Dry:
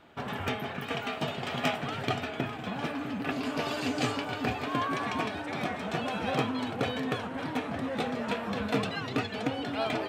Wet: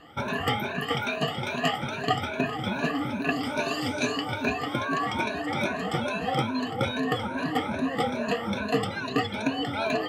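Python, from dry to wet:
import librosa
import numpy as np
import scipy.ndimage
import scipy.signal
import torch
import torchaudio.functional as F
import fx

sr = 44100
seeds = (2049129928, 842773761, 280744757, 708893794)

y = fx.spec_ripple(x, sr, per_octave=1.5, drift_hz=2.4, depth_db=20)
y = fx.rider(y, sr, range_db=3, speed_s=0.5)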